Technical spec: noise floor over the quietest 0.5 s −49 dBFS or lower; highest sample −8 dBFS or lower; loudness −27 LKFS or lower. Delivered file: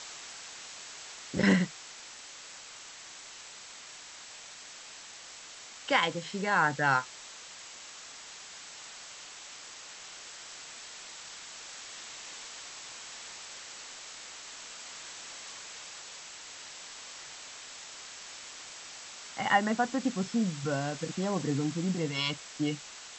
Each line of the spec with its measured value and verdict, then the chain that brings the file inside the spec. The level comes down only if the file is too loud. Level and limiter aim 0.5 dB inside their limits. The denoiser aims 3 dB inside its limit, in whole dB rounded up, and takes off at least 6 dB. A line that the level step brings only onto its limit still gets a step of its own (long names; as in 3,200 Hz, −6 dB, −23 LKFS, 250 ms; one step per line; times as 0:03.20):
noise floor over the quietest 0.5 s −48 dBFS: out of spec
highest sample −11.5 dBFS: in spec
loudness −35.0 LKFS: in spec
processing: broadband denoise 6 dB, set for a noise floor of −48 dBFS